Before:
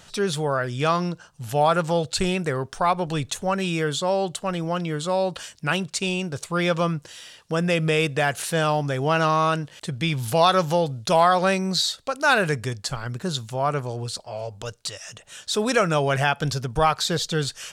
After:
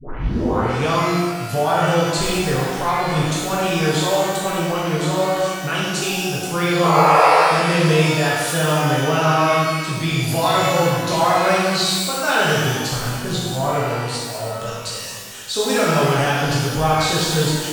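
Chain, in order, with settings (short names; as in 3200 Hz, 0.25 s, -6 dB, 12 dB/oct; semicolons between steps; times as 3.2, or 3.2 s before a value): tape start at the beginning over 0.71 s; in parallel at +3 dB: limiter -16.5 dBFS, peak gain reduction 11 dB; on the sum: painted sound noise, 6.83–7.39, 430–1400 Hz -10 dBFS; shimmer reverb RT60 1.4 s, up +12 st, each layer -8 dB, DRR -7 dB; gain -10 dB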